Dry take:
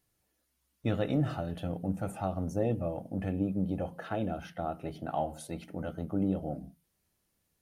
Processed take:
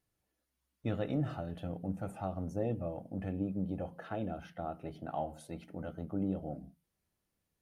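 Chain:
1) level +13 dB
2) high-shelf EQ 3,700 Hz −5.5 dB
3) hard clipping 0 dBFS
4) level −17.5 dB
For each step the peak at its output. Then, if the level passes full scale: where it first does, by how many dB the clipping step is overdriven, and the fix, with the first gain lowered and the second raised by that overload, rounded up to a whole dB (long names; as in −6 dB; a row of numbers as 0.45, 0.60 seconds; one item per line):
−4.0, −4.5, −4.5, −22.0 dBFS
no step passes full scale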